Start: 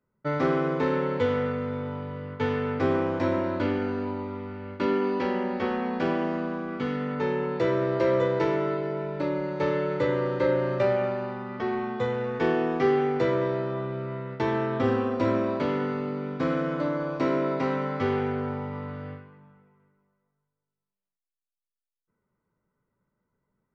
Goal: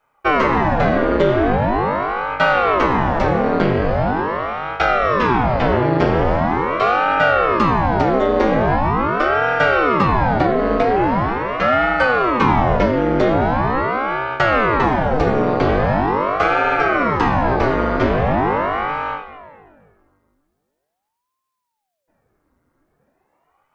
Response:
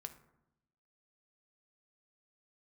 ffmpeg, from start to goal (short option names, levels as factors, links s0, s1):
-filter_complex "[0:a]acompressor=threshold=0.0562:ratio=6,asplit=2[s0][s1];[1:a]atrim=start_sample=2205[s2];[s1][s2]afir=irnorm=-1:irlink=0,volume=3.76[s3];[s0][s3]amix=inputs=2:normalize=0,aeval=exprs='val(0)*sin(2*PI*570*n/s+570*0.85/0.42*sin(2*PI*0.42*n/s))':c=same,volume=1.88"